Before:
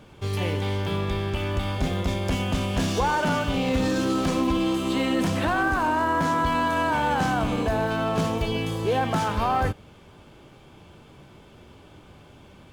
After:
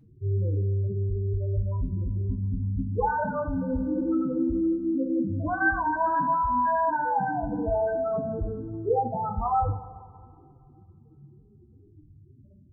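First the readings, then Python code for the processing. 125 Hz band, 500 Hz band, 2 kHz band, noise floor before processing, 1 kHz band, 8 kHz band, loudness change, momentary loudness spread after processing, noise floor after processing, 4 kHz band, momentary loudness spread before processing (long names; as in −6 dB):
−0.5 dB, −2.5 dB, −4.0 dB, −50 dBFS, −1.0 dB, below −40 dB, −2.5 dB, 6 LU, −55 dBFS, below −40 dB, 4 LU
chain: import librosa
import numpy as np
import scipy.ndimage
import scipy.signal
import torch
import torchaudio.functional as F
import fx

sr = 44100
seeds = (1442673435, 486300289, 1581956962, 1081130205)

y = fx.spec_topn(x, sr, count=4)
y = fx.rev_double_slope(y, sr, seeds[0], early_s=0.3, late_s=2.3, knee_db=-18, drr_db=1.0)
y = y * 10.0 ** (-1.5 / 20.0)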